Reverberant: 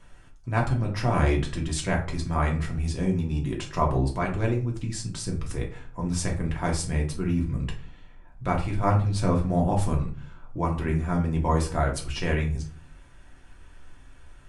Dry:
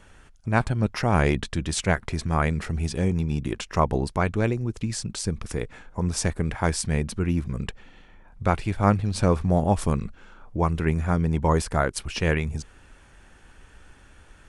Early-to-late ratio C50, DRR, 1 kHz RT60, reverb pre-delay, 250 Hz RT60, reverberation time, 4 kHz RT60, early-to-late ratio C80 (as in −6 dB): 10.0 dB, −1.0 dB, 0.40 s, 3 ms, 0.60 s, 0.40 s, 0.25 s, 14.5 dB